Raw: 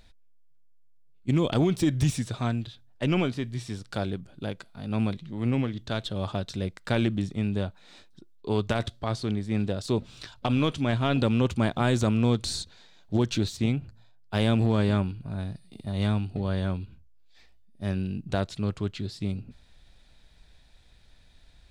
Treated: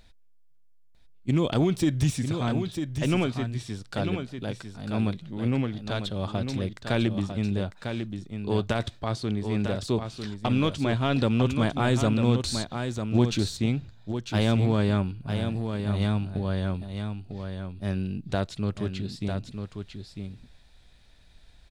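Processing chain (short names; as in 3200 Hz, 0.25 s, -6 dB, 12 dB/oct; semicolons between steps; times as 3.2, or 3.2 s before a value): echo 0.949 s -7 dB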